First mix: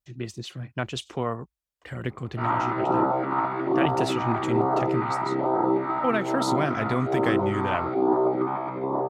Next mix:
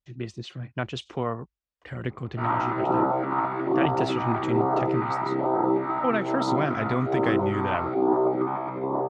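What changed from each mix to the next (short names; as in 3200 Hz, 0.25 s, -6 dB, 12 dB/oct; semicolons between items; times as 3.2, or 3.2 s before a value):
master: add air absorption 99 m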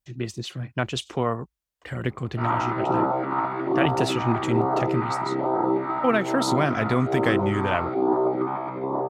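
speech +3.5 dB; master: remove air absorption 99 m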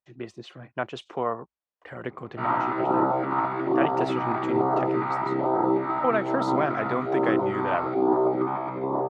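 speech: add band-pass 790 Hz, Q 0.77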